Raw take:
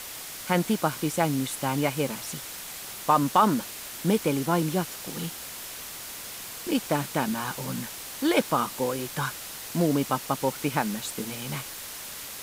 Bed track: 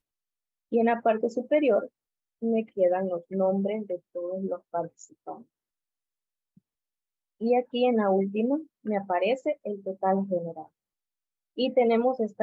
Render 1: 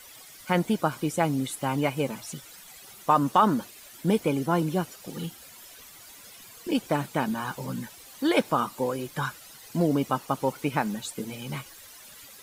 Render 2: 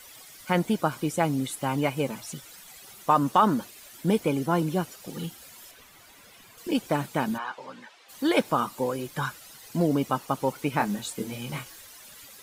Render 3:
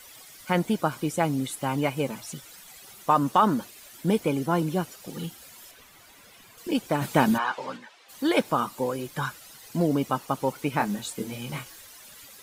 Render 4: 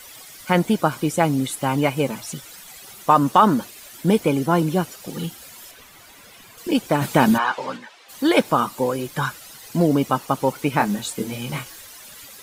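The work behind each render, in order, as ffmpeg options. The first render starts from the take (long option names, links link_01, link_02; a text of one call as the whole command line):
ffmpeg -i in.wav -af "afftdn=noise_reduction=13:noise_floor=-39" out.wav
ffmpeg -i in.wav -filter_complex "[0:a]asettb=1/sr,asplit=3[link_01][link_02][link_03];[link_01]atrim=end=5.714[link_04];[link_02]atrim=start=5.71:end=6.58,asetpts=PTS-STARTPTS,afade=type=in:duration=0.004:curve=qsin,afade=type=out:start_time=0.866:duration=0.004:curve=qsin,acrossover=split=3400[link_05][link_06];[link_06]acompressor=threshold=-53dB:ratio=4:attack=1:release=60[link_07];[link_05][link_07]amix=inputs=2:normalize=0[link_08];[link_03]atrim=start=6.576[link_09];[link_04][link_08]acrossfade=duration=0.004:curve1=hsin:curve2=qsin[link_10];[link_10][link_09]acrossfade=duration=0.004:curve1=qsin:curve2=hsin,asplit=3[link_11][link_12][link_13];[link_11]afade=type=out:start_time=7.37:duration=0.02[link_14];[link_12]highpass=550,lowpass=3400,afade=type=in:start_time=7.37:duration=0.02,afade=type=out:start_time=8.08:duration=0.02[link_15];[link_13]afade=type=in:start_time=8.08:duration=0.02[link_16];[link_14][link_15][link_16]amix=inputs=3:normalize=0,asettb=1/sr,asplit=3[link_17][link_18][link_19];[link_17]atrim=end=10.774[link_20];[link_18]atrim=start=10.77:end=11.82,asetpts=PTS-STARTPTS,afade=type=in:duration=0.004:curve=qsin,afade=type=out:start_time=1.046:duration=0.004:curve=qsin,asplit=2[link_21][link_22];[link_22]adelay=25,volume=-5dB[link_23];[link_21][link_23]amix=inputs=2:normalize=0,atrim=end_sample=46305[link_24];[link_19]atrim=start=11.816[link_25];[link_20][link_24]acrossfade=duration=0.004:curve1=hsin:curve2=qsin[link_26];[link_26][link_25]acrossfade=duration=0.004:curve1=qsin:curve2=hsin" out.wav
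ffmpeg -i in.wav -filter_complex "[0:a]asplit=3[link_01][link_02][link_03];[link_01]afade=type=out:start_time=7.01:duration=0.02[link_04];[link_02]acontrast=80,afade=type=in:start_time=7.01:duration=0.02,afade=type=out:start_time=7.76:duration=0.02[link_05];[link_03]afade=type=in:start_time=7.76:duration=0.02[link_06];[link_04][link_05][link_06]amix=inputs=3:normalize=0" out.wav
ffmpeg -i in.wav -af "volume=6dB,alimiter=limit=-2dB:level=0:latency=1" out.wav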